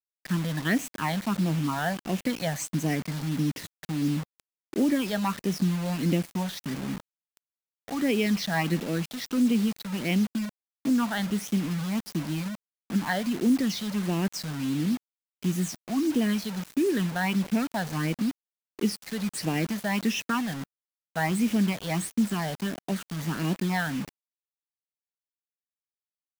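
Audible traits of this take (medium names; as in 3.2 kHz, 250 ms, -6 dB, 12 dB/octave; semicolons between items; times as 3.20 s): phasing stages 8, 1.5 Hz, lowest notch 320–1400 Hz; a quantiser's noise floor 6-bit, dither none; Vorbis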